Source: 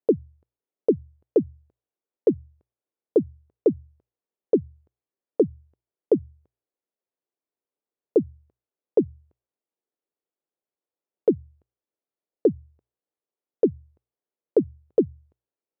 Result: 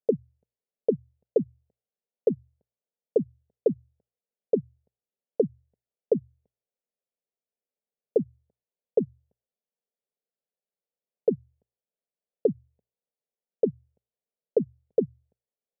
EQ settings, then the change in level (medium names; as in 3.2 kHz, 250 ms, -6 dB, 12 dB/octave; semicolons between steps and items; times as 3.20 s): low-pass 1.1 kHz 6 dB/octave; static phaser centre 320 Hz, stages 6; 0.0 dB